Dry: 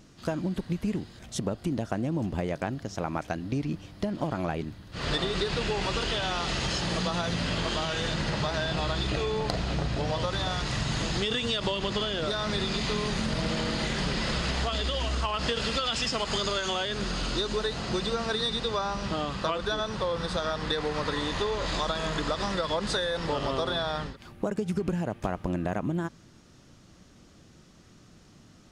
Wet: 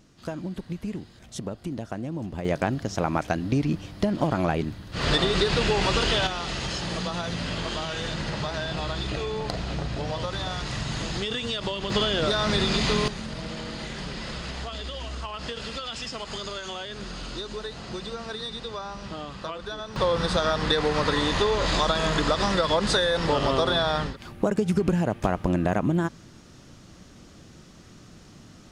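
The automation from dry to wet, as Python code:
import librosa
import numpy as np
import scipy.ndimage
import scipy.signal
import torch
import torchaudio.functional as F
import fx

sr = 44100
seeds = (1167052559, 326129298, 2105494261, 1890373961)

y = fx.gain(x, sr, db=fx.steps((0.0, -3.0), (2.45, 6.0), (6.27, -1.0), (11.9, 5.5), (13.08, -5.5), (19.96, 6.0)))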